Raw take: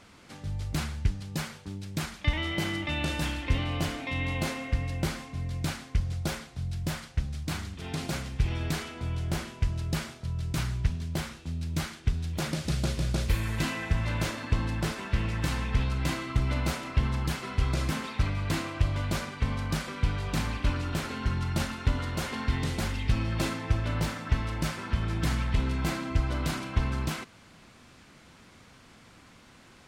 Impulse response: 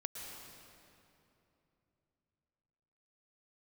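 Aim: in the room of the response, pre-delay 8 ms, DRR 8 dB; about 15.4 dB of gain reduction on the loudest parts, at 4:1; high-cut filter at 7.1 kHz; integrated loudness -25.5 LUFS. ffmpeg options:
-filter_complex "[0:a]lowpass=7100,acompressor=threshold=0.0112:ratio=4,asplit=2[s0][s1];[1:a]atrim=start_sample=2205,adelay=8[s2];[s1][s2]afir=irnorm=-1:irlink=0,volume=0.422[s3];[s0][s3]amix=inputs=2:normalize=0,volume=6.31"

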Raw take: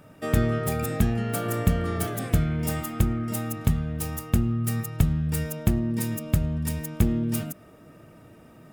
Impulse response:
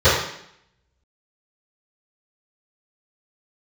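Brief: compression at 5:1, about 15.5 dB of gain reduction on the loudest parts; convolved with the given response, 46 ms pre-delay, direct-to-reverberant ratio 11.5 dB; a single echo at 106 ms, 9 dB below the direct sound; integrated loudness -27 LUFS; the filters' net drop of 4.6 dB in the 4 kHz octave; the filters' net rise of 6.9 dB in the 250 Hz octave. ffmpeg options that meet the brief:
-filter_complex "[0:a]equalizer=f=250:t=o:g=8.5,equalizer=f=4000:t=o:g=-6.5,acompressor=threshold=0.0251:ratio=5,aecho=1:1:106:0.355,asplit=2[s0][s1];[1:a]atrim=start_sample=2205,adelay=46[s2];[s1][s2]afir=irnorm=-1:irlink=0,volume=0.015[s3];[s0][s3]amix=inputs=2:normalize=0,volume=2.24"

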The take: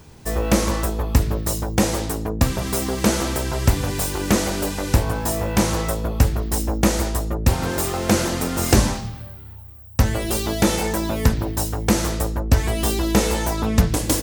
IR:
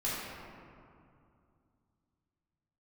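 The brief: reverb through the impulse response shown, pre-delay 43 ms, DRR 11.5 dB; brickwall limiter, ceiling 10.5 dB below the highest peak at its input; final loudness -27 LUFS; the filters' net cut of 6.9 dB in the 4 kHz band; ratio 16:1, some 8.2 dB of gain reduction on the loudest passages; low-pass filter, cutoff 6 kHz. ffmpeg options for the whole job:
-filter_complex "[0:a]lowpass=6000,equalizer=f=4000:t=o:g=-8,acompressor=threshold=0.126:ratio=16,alimiter=limit=0.158:level=0:latency=1,asplit=2[s0][s1];[1:a]atrim=start_sample=2205,adelay=43[s2];[s1][s2]afir=irnorm=-1:irlink=0,volume=0.126[s3];[s0][s3]amix=inputs=2:normalize=0"

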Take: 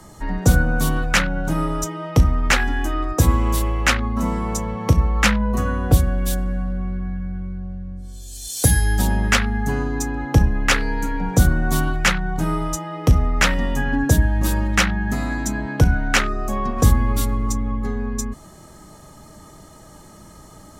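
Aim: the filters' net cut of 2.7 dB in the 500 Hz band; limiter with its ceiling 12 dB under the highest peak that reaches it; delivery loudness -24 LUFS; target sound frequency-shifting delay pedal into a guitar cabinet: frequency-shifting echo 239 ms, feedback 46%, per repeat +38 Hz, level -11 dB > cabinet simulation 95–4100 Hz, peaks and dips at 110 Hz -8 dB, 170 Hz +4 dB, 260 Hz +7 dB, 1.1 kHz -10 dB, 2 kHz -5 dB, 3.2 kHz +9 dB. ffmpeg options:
-filter_complex "[0:a]equalizer=f=500:t=o:g=-3.5,alimiter=limit=0.178:level=0:latency=1,asplit=6[s0][s1][s2][s3][s4][s5];[s1]adelay=239,afreqshift=38,volume=0.282[s6];[s2]adelay=478,afreqshift=76,volume=0.13[s7];[s3]adelay=717,afreqshift=114,volume=0.0596[s8];[s4]adelay=956,afreqshift=152,volume=0.0275[s9];[s5]adelay=1195,afreqshift=190,volume=0.0126[s10];[s0][s6][s7][s8][s9][s10]amix=inputs=6:normalize=0,highpass=95,equalizer=f=110:t=q:w=4:g=-8,equalizer=f=170:t=q:w=4:g=4,equalizer=f=260:t=q:w=4:g=7,equalizer=f=1100:t=q:w=4:g=-10,equalizer=f=2000:t=q:w=4:g=-5,equalizer=f=3200:t=q:w=4:g=9,lowpass=f=4100:w=0.5412,lowpass=f=4100:w=1.3066,volume=1.26"

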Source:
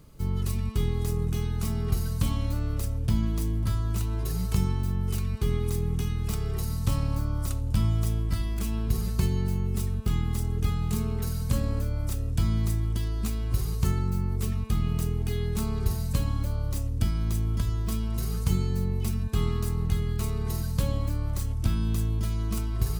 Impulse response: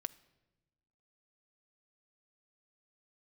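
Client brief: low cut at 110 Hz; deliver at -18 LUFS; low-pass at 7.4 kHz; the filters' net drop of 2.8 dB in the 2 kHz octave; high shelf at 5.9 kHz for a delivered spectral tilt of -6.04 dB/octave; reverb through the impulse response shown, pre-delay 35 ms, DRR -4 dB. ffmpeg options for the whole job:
-filter_complex "[0:a]highpass=110,lowpass=7400,equalizer=f=2000:t=o:g=-4,highshelf=f=5900:g=4.5,asplit=2[s0][s1];[1:a]atrim=start_sample=2205,adelay=35[s2];[s1][s2]afir=irnorm=-1:irlink=0,volume=2[s3];[s0][s3]amix=inputs=2:normalize=0,volume=3.16"

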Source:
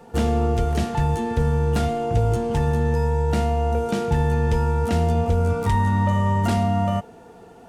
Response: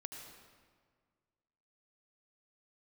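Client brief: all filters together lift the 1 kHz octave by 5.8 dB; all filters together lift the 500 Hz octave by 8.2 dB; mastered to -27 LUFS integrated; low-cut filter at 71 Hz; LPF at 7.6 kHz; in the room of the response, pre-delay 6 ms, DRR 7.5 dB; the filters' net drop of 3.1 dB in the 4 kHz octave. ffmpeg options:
-filter_complex "[0:a]highpass=71,lowpass=7600,equalizer=f=500:t=o:g=8.5,equalizer=f=1000:t=o:g=4,equalizer=f=4000:t=o:g=-4.5,asplit=2[s0][s1];[1:a]atrim=start_sample=2205,adelay=6[s2];[s1][s2]afir=irnorm=-1:irlink=0,volume=0.596[s3];[s0][s3]amix=inputs=2:normalize=0,volume=0.335"

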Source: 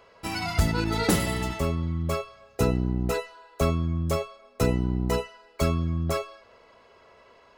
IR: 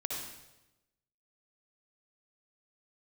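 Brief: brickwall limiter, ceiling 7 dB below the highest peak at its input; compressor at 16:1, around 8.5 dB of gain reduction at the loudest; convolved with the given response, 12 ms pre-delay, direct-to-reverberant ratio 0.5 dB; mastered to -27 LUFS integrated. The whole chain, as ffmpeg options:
-filter_complex "[0:a]acompressor=threshold=0.0562:ratio=16,alimiter=limit=0.075:level=0:latency=1,asplit=2[s0][s1];[1:a]atrim=start_sample=2205,adelay=12[s2];[s1][s2]afir=irnorm=-1:irlink=0,volume=0.708[s3];[s0][s3]amix=inputs=2:normalize=0,volume=1.33"

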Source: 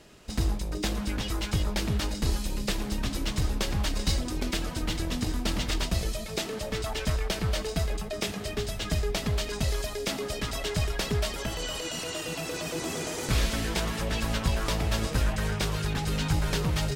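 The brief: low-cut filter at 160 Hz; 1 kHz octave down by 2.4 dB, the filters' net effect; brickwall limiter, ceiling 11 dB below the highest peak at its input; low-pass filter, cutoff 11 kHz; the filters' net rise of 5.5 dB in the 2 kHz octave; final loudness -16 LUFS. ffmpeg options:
-af "highpass=160,lowpass=11000,equalizer=f=1000:t=o:g=-6,equalizer=f=2000:t=o:g=8.5,volume=7.08,alimiter=limit=0.501:level=0:latency=1"

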